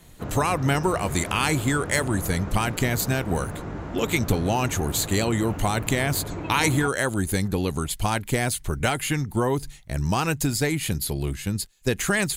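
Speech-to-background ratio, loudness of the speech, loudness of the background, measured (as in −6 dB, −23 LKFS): 9.5 dB, −25.0 LKFS, −34.5 LKFS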